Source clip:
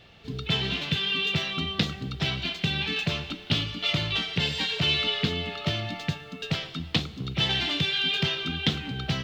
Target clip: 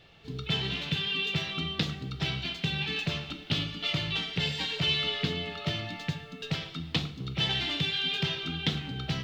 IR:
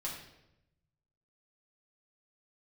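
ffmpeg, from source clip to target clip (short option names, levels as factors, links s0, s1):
-filter_complex "[0:a]asplit=2[s0][s1];[1:a]atrim=start_sample=2205,atrim=end_sample=6615[s2];[s1][s2]afir=irnorm=-1:irlink=0,volume=0.447[s3];[s0][s3]amix=inputs=2:normalize=0,volume=0.501"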